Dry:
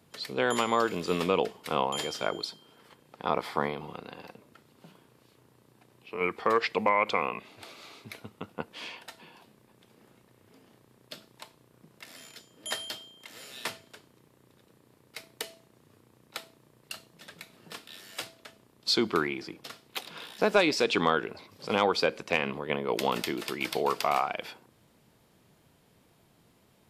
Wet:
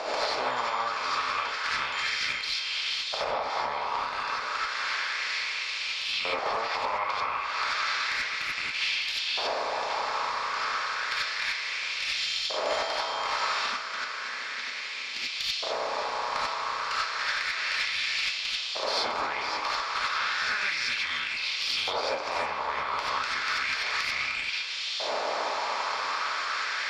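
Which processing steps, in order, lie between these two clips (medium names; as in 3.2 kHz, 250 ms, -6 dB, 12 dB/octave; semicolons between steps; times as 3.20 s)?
spectral levelling over time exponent 0.4; LFO high-pass saw up 0.32 Hz 630–3400 Hz; compression 6:1, threshold -30 dBFS, peak gain reduction 18 dB; 13.64–15.27 s: valve stage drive 19 dB, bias 0.65; elliptic band-pass 190–6300 Hz, stop band 40 dB; Chebyshev shaper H 4 -23 dB, 5 -20 dB, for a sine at -11.5 dBFS; gated-style reverb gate 110 ms rising, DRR -6 dB; trim -5 dB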